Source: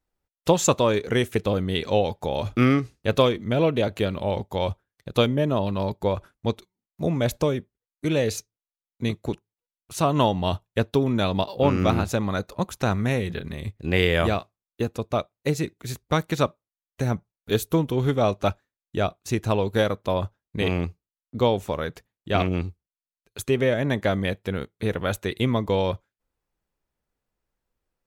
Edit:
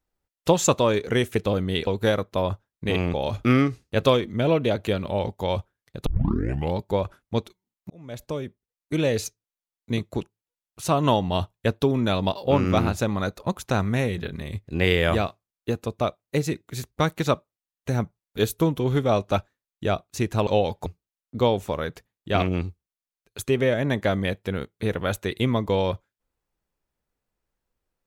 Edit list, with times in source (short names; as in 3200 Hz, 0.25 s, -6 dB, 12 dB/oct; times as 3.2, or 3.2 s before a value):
1.87–2.26 swap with 19.59–20.86
5.18 tape start 0.72 s
7.02–8.07 fade in